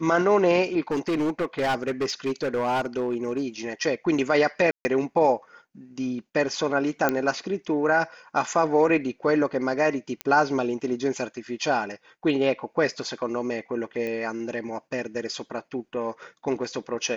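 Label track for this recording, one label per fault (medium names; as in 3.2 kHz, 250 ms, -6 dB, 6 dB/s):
0.910000	3.420000	clipped -21 dBFS
4.710000	4.850000	dropout 140 ms
7.090000	7.090000	pop -8 dBFS
10.210000	10.210000	pop -13 dBFS
14.070000	14.070000	pop -20 dBFS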